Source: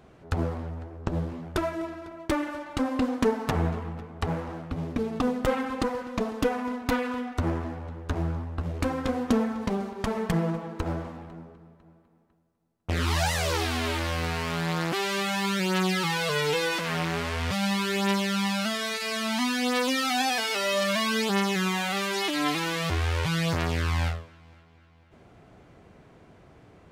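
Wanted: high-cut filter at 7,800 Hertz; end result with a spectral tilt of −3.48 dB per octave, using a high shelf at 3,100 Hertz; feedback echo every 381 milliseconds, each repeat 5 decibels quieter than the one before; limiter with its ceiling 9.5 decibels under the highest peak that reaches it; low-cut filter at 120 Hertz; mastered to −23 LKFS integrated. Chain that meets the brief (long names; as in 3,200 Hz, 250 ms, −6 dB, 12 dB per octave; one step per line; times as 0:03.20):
high-pass filter 120 Hz
low-pass filter 7,800 Hz
high-shelf EQ 3,100 Hz +9 dB
brickwall limiter −15.5 dBFS
repeating echo 381 ms, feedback 56%, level −5 dB
level +4 dB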